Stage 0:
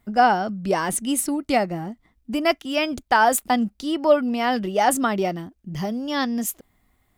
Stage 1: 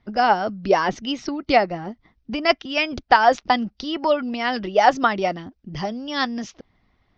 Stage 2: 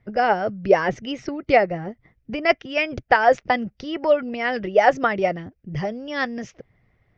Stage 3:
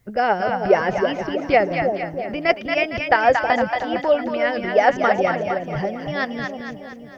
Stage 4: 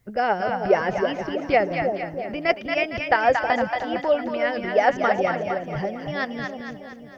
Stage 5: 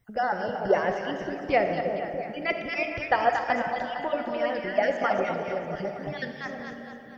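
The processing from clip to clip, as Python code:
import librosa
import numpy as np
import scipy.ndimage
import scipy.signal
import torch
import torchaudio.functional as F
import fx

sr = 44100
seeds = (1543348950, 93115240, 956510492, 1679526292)

y1 = fx.hpss(x, sr, part='harmonic', gain_db=-9)
y1 = scipy.signal.sosfilt(scipy.signal.butter(12, 5800.0, 'lowpass', fs=sr, output='sos'), y1)
y1 = y1 * 10.0 ** (5.5 / 20.0)
y2 = fx.graphic_eq(y1, sr, hz=(125, 250, 500, 1000, 2000, 4000), db=(11, -5, 8, -6, 7, -10))
y2 = y2 * 10.0 ** (-2.0 / 20.0)
y3 = fx.env_lowpass(y2, sr, base_hz=2700.0, full_db=-16.5)
y3 = fx.echo_split(y3, sr, split_hz=690.0, low_ms=320, high_ms=229, feedback_pct=52, wet_db=-4.5)
y3 = fx.quant_dither(y3, sr, seeds[0], bits=12, dither='triangular')
y4 = y3 + 10.0 ** (-23.5 / 20.0) * np.pad(y3, (int(300 * sr / 1000.0), 0))[:len(y3)]
y4 = y4 * 10.0 ** (-3.0 / 20.0)
y5 = fx.spec_dropout(y4, sr, seeds[1], share_pct=26)
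y5 = fx.rev_freeverb(y5, sr, rt60_s=2.5, hf_ratio=0.5, predelay_ms=0, drr_db=5.5)
y5 = y5 * 10.0 ** (-4.0 / 20.0)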